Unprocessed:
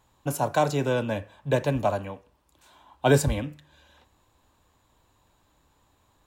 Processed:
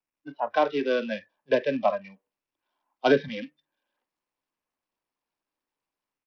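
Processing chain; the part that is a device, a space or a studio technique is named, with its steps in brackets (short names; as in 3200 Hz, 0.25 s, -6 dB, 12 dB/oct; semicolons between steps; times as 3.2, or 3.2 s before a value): spectral noise reduction 25 dB; Bluetooth headset (HPF 220 Hz 24 dB/oct; AGC gain up to 6 dB; downsampling 8000 Hz; gain -4 dB; SBC 64 kbps 44100 Hz)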